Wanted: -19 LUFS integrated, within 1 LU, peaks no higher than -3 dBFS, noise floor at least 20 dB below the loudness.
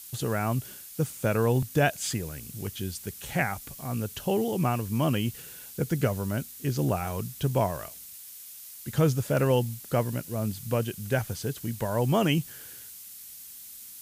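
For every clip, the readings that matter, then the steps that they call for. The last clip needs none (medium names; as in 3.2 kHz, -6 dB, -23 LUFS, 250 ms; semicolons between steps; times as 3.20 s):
noise floor -45 dBFS; noise floor target -49 dBFS; loudness -28.5 LUFS; peak level -11.5 dBFS; loudness target -19.0 LUFS
-> noise reduction 6 dB, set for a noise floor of -45 dBFS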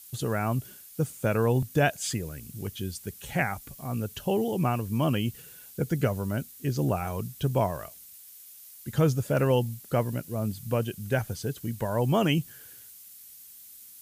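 noise floor -49 dBFS; loudness -29.0 LUFS; peak level -11.5 dBFS; loudness target -19.0 LUFS
-> trim +10 dB; peak limiter -3 dBFS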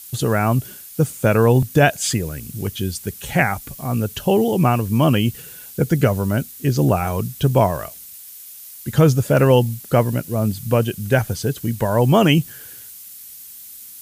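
loudness -19.0 LUFS; peak level -3.0 dBFS; noise floor -39 dBFS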